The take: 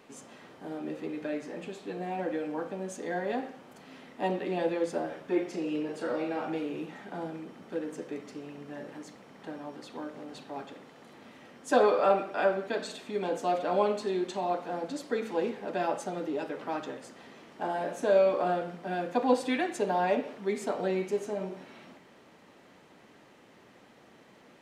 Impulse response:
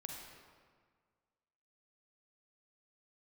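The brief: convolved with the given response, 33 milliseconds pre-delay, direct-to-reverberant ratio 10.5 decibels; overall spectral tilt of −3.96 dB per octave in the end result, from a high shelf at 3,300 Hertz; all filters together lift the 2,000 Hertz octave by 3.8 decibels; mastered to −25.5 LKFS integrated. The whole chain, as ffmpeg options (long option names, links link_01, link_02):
-filter_complex "[0:a]equalizer=frequency=2000:width_type=o:gain=6,highshelf=frequency=3300:gain=-3,asplit=2[link_01][link_02];[1:a]atrim=start_sample=2205,adelay=33[link_03];[link_02][link_03]afir=irnorm=-1:irlink=0,volume=-8dB[link_04];[link_01][link_04]amix=inputs=2:normalize=0,volume=5.5dB"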